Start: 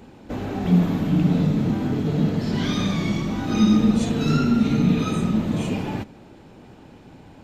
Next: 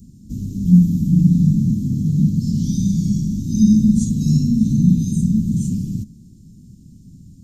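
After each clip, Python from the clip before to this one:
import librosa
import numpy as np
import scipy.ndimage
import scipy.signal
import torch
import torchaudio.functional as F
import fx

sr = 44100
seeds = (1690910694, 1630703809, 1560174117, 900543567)

y = scipy.signal.sosfilt(scipy.signal.ellip(3, 1.0, 80, [200.0, 6100.0], 'bandstop', fs=sr, output='sos'), x)
y = y * librosa.db_to_amplitude(7.0)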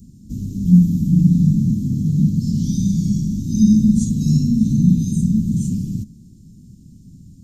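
y = x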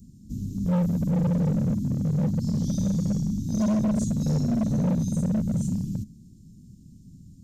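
y = np.clip(x, -10.0 ** (-15.0 / 20.0), 10.0 ** (-15.0 / 20.0))
y = y * librosa.db_to_amplitude(-5.5)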